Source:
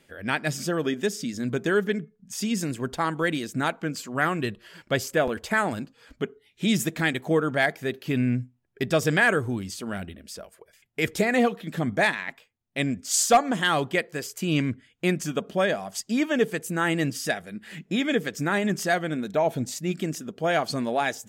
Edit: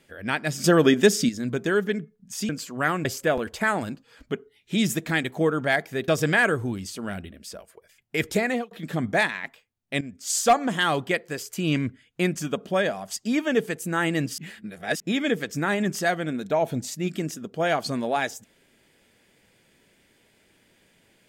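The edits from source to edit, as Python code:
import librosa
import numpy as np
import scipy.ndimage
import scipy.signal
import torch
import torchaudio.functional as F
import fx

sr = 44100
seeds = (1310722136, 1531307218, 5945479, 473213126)

y = fx.edit(x, sr, fx.clip_gain(start_s=0.64, length_s=0.65, db=9.0),
    fx.cut(start_s=2.49, length_s=1.37),
    fx.cut(start_s=4.42, length_s=0.53),
    fx.cut(start_s=7.98, length_s=0.94),
    fx.fade_out_span(start_s=11.26, length_s=0.29),
    fx.fade_in_from(start_s=12.85, length_s=0.52, floor_db=-13.5),
    fx.reverse_span(start_s=17.22, length_s=0.62), tone=tone)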